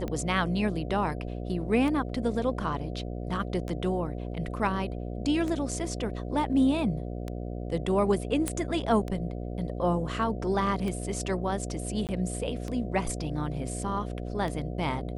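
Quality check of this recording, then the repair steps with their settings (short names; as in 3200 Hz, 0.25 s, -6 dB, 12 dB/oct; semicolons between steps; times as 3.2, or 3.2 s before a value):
buzz 60 Hz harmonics 12 -35 dBFS
tick 33 1/3 rpm -21 dBFS
8.48 pop -14 dBFS
12.07–12.09 gap 18 ms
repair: de-click; de-hum 60 Hz, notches 12; interpolate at 12.07, 18 ms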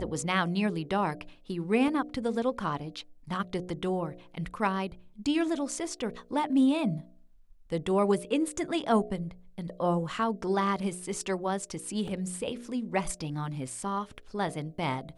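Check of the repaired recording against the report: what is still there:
8.48 pop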